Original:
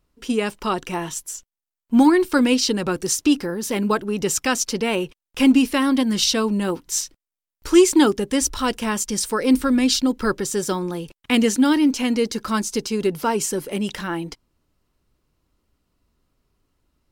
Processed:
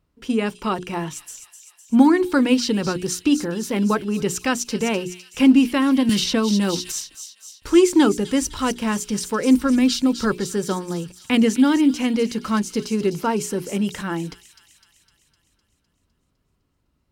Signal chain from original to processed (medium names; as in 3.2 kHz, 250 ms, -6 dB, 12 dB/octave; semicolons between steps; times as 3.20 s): high-pass 85 Hz 6 dB/octave; tone controls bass +7 dB, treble -5 dB; hum notches 60/120/180/240/300/360/420 Hz; feedback echo behind a high-pass 254 ms, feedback 60%, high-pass 3.8 kHz, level -7.5 dB; 6.09–6.92 s: three bands compressed up and down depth 100%; trim -1 dB